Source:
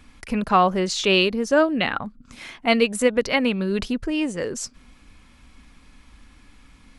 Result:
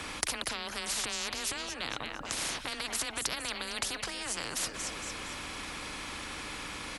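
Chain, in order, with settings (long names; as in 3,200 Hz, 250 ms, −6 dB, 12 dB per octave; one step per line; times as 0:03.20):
parametric band 290 Hz +9 dB 0.24 octaves
in parallel at −1 dB: downward compressor, threshold −33 dBFS, peak gain reduction 21 dB
on the sum: brickwall limiter −14 dBFS, peak gain reduction 11 dB
frequency shifter +17 Hz
on a send: repeating echo 228 ms, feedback 42%, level −20 dB
on the sum: every bin compressed towards the loudest bin 10 to 1
level −1.5 dB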